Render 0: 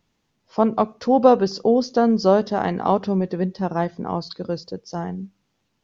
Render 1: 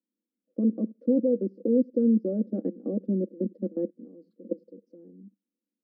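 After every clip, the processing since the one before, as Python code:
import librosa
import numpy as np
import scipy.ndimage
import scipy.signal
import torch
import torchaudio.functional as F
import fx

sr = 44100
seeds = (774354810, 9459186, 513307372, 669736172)

y = fx.level_steps(x, sr, step_db=22)
y = scipy.signal.sosfilt(scipy.signal.ellip(3, 1.0, 40, [200.0, 490.0], 'bandpass', fs=sr, output='sos'), y)
y = y + 0.86 * np.pad(y, (int(3.6 * sr / 1000.0), 0))[:len(y)]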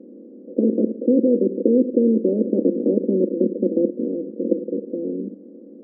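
y = fx.bin_compress(x, sr, power=0.4)
y = fx.bandpass_q(y, sr, hz=360.0, q=2.1)
y = y * 10.0 ** (8.0 / 20.0)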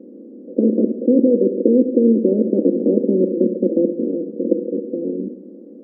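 y = fx.echo_feedback(x, sr, ms=69, feedback_pct=60, wet_db=-12)
y = y * 10.0 ** (2.5 / 20.0)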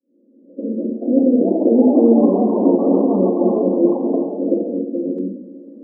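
y = fx.fade_in_head(x, sr, length_s=1.53)
y = fx.room_shoebox(y, sr, seeds[0], volume_m3=150.0, walls='furnished', distance_m=2.5)
y = fx.echo_pitch(y, sr, ms=554, semitones=4, count=3, db_per_echo=-6.0)
y = y * 10.0 ** (-6.5 / 20.0)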